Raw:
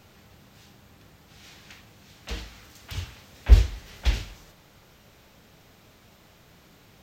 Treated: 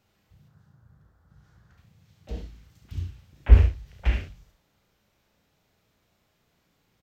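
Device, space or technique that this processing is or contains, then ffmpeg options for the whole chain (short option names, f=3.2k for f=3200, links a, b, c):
slapback doubling: -filter_complex "[0:a]asettb=1/sr,asplit=3[a][b][c];[a]atrim=end=0.484[d];[b]atrim=start=0.48:end=1.78,asetpts=PTS-STARTPTS,afade=t=in:d=0.004:c=qsin,afade=t=out:st=1.296:d=0.004:c=qsin,highshelf=f=1.9k:t=q:w=3:g=-8[e];[c]atrim=start=1.776[f];[d][e]acrossfade=d=0.004:c1=hsin:c2=qsin[g];[g][f]acrossfade=d=0.004:c1=qsin:c2=hsin,afwtdn=0.0126,asplit=3[h][i][j];[i]adelay=34,volume=-8dB[k];[j]adelay=68,volume=-6.5dB[l];[h][k][l]amix=inputs=3:normalize=0"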